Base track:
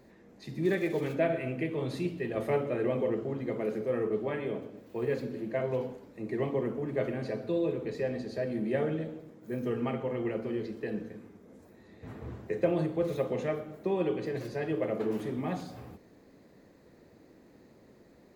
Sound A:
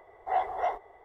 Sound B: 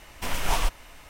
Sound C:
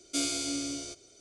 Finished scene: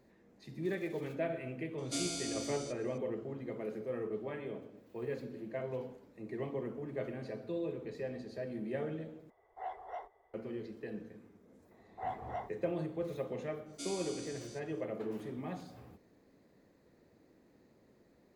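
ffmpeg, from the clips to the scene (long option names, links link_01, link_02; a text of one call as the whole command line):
ffmpeg -i bed.wav -i cue0.wav -i cue1.wav -i cue2.wav -filter_complex "[3:a]asplit=2[link_01][link_02];[1:a]asplit=2[link_03][link_04];[0:a]volume=-8dB[link_05];[link_01]equalizer=frequency=750:width=1.5:gain=4.5[link_06];[link_05]asplit=2[link_07][link_08];[link_07]atrim=end=9.304[link_09];[link_03]atrim=end=1.04,asetpts=PTS-STARTPTS,volume=-14.5dB[link_10];[link_08]atrim=start=10.336[link_11];[link_06]atrim=end=1.2,asetpts=PTS-STARTPTS,volume=-7dB,afade=type=in:duration=0.004:curve=hsin,afade=type=out:start_time=1.196:duration=0.004:curve=hsin,adelay=1780[link_12];[link_04]atrim=end=1.04,asetpts=PTS-STARTPTS,volume=-11.5dB,afade=type=in:duration=0.004:curve=hsin,afade=type=out:start_time=1.036:duration=0.004:curve=hsin,adelay=11710[link_13];[link_02]atrim=end=1.2,asetpts=PTS-STARTPTS,volume=-13.5dB,afade=type=in:duration=0.05,afade=type=out:start_time=1.15:duration=0.05,adelay=13650[link_14];[link_09][link_10]acrossfade=duration=0.004:curve1=hsin:curve2=hsin[link_15];[link_15][link_11]acrossfade=duration=0.004:curve1=hsin:curve2=hsin[link_16];[link_16][link_12][link_13][link_14]amix=inputs=4:normalize=0" out.wav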